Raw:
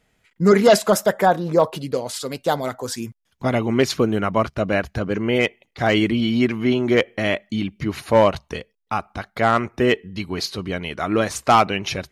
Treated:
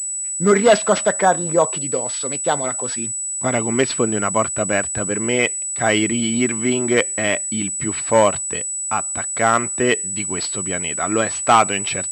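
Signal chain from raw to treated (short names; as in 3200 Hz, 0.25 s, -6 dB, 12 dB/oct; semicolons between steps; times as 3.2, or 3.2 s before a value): HPF 59 Hz; tilt +1.5 dB/oct; pulse-width modulation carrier 7900 Hz; gain +1.5 dB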